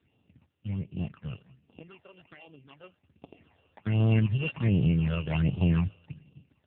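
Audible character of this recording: a buzz of ramps at a fixed pitch in blocks of 16 samples; phasing stages 8, 1.3 Hz, lowest notch 240–1800 Hz; AMR-NB

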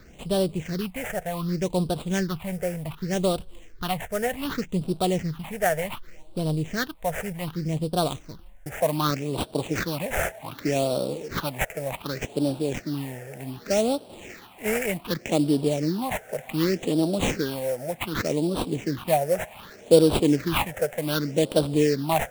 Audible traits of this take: aliases and images of a low sample rate 5000 Hz, jitter 20%; phasing stages 6, 0.66 Hz, lowest notch 280–1900 Hz

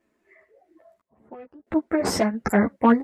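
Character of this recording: random-step tremolo 3 Hz, depth 95%; a shimmering, thickened sound

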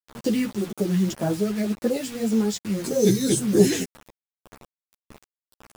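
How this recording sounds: phasing stages 2, 1.8 Hz, lowest notch 730–3100 Hz; a quantiser's noise floor 6-bit, dither none; a shimmering, thickened sound

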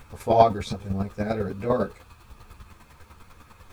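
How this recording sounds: a quantiser's noise floor 10-bit, dither none; chopped level 10 Hz, depth 60%, duty 15%; a shimmering, thickened sound

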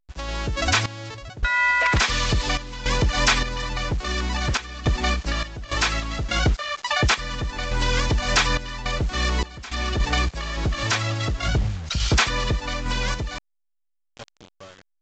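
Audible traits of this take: a quantiser's noise floor 6-bit, dither none; random-step tremolo, depth 90%; A-law

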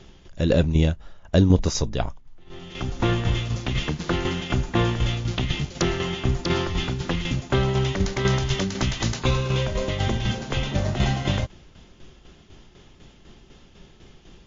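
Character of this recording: tremolo saw down 4 Hz, depth 60%; MP3

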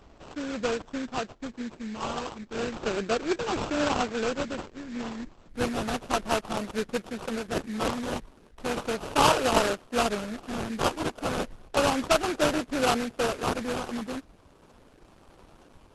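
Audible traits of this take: a buzz of ramps at a fixed pitch in blocks of 8 samples; phasing stages 8, 0.34 Hz, lowest notch 650–2600 Hz; aliases and images of a low sample rate 2000 Hz, jitter 20%; Opus

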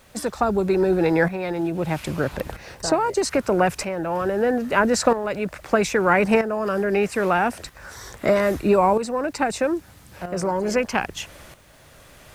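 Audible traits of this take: tremolo saw up 0.78 Hz, depth 70%; a quantiser's noise floor 12-bit, dither triangular

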